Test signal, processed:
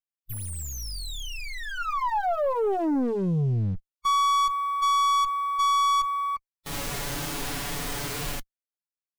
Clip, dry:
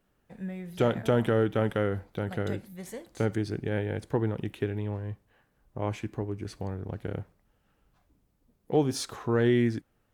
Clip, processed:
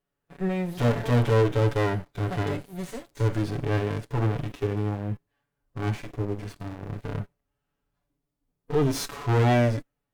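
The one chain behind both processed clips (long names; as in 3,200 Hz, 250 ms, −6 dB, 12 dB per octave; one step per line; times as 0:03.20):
lower of the sound and its delayed copy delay 7 ms
leveller curve on the samples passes 3
harmonic and percussive parts rebalanced percussive −14 dB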